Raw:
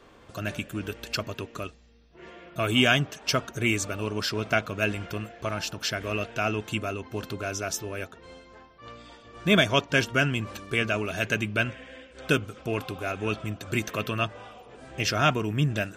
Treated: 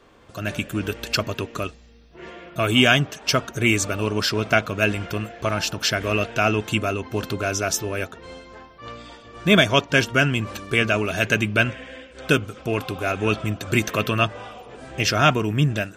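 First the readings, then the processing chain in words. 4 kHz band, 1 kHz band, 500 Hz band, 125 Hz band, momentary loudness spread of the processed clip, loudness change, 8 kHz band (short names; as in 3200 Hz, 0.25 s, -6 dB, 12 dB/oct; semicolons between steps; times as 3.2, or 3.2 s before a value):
+5.5 dB, +6.0 dB, +6.0 dB, +5.5 dB, 20 LU, +6.0 dB, +6.5 dB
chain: AGC gain up to 7.5 dB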